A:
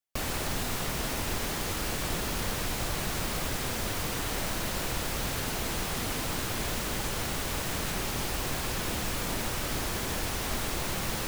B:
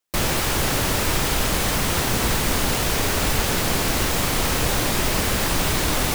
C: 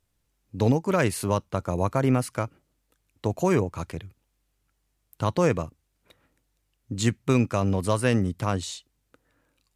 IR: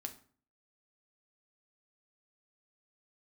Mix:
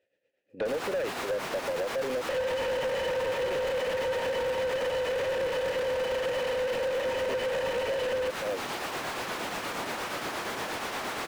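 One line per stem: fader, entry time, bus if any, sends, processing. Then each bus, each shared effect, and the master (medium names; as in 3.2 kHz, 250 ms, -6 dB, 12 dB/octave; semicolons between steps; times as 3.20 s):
-10.5 dB, 0.50 s, no bus, no send, high-pass 200 Hz 6 dB/octave
-1.5 dB, 2.15 s, bus A, send -17 dB, low-pass 9.9 kHz; bass shelf 480 Hz -8.5 dB; small resonant body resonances 510/930/3000 Hz, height 18 dB, ringing for 85 ms
+1.5 dB, 0.00 s, bus A, no send, peaking EQ 1.2 kHz -6 dB 2.9 oct
bus A: 0.0 dB, vowel filter e; compression, threshold -27 dBFS, peak gain reduction 6 dB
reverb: on, RT60 0.45 s, pre-delay 4 ms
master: tremolo triangle 8.5 Hz, depth 70%; overdrive pedal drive 33 dB, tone 1.3 kHz, clips at -17.5 dBFS; compression 2:1, threshold -30 dBFS, peak gain reduction 4.5 dB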